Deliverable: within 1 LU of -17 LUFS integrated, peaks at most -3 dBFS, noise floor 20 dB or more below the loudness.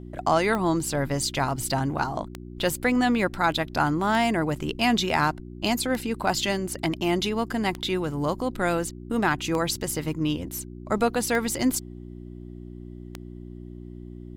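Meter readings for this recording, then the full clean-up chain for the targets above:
clicks found 8; hum 60 Hz; highest harmonic 360 Hz; hum level -38 dBFS; loudness -25.5 LUFS; peak level -10.0 dBFS; loudness target -17.0 LUFS
-> de-click; de-hum 60 Hz, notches 6; trim +8.5 dB; peak limiter -3 dBFS

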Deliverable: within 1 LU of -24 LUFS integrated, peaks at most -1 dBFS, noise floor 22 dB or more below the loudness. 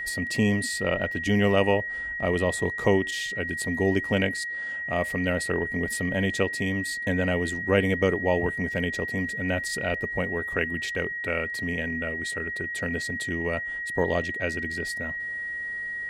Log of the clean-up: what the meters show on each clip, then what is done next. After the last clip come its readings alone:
steady tone 1.9 kHz; tone level -30 dBFS; loudness -26.5 LUFS; peak level -6.0 dBFS; loudness target -24.0 LUFS
-> band-stop 1.9 kHz, Q 30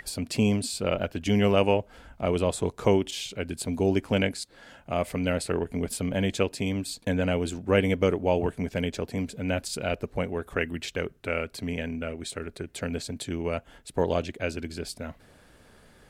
steady tone not found; loudness -28.5 LUFS; peak level -6.5 dBFS; loudness target -24.0 LUFS
-> trim +4.5 dB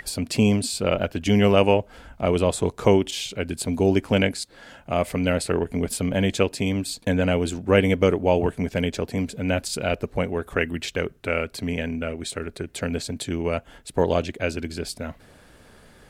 loudness -24.0 LUFS; peak level -2.0 dBFS; noise floor -53 dBFS

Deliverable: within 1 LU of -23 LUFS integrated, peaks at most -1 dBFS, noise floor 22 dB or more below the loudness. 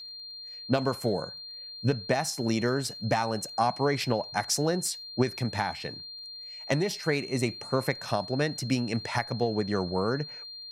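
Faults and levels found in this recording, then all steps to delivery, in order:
tick rate 28 per s; steady tone 4.2 kHz; tone level -40 dBFS; loudness -29.5 LUFS; peak level -11.5 dBFS; loudness target -23.0 LUFS
-> de-click; band-stop 4.2 kHz, Q 30; trim +6.5 dB

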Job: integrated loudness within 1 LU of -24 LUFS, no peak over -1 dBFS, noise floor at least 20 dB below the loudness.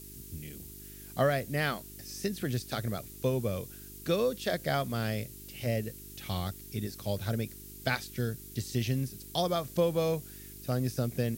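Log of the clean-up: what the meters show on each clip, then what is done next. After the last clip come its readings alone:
hum 50 Hz; highest harmonic 400 Hz; hum level -49 dBFS; noise floor -48 dBFS; noise floor target -53 dBFS; loudness -33.0 LUFS; peak level -14.0 dBFS; loudness target -24.0 LUFS
-> de-hum 50 Hz, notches 8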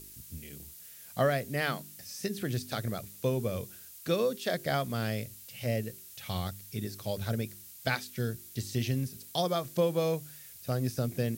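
hum not found; noise floor -50 dBFS; noise floor target -53 dBFS
-> noise reduction 6 dB, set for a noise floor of -50 dBFS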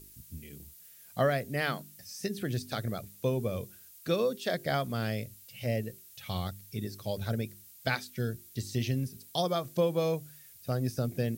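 noise floor -54 dBFS; loudness -33.0 LUFS; peak level -14.5 dBFS; loudness target -24.0 LUFS
-> trim +9 dB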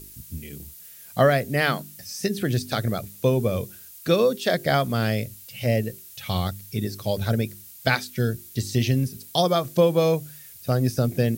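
loudness -24.0 LUFS; peak level -5.5 dBFS; noise floor -45 dBFS

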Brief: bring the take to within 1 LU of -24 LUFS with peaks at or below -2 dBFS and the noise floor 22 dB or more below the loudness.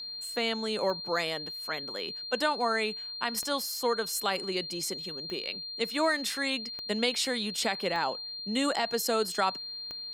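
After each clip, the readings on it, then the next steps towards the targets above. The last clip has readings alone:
clicks found 6; steady tone 4.2 kHz; tone level -37 dBFS; loudness -30.5 LUFS; peak level -12.5 dBFS; loudness target -24.0 LUFS
-> de-click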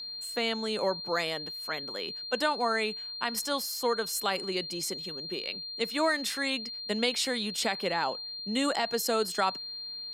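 clicks found 0; steady tone 4.2 kHz; tone level -37 dBFS
-> band-stop 4.2 kHz, Q 30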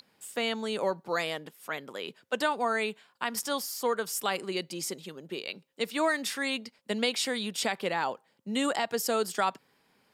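steady tone not found; loudness -31.5 LUFS; peak level -13.0 dBFS; loudness target -24.0 LUFS
-> trim +7.5 dB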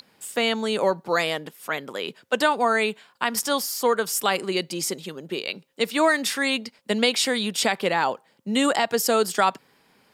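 loudness -24.0 LUFS; peak level -5.5 dBFS; noise floor -62 dBFS

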